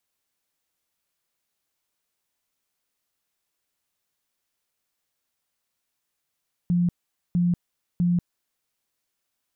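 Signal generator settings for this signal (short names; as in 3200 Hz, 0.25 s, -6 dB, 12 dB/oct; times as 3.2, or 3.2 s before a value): tone bursts 175 Hz, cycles 33, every 0.65 s, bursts 3, -18 dBFS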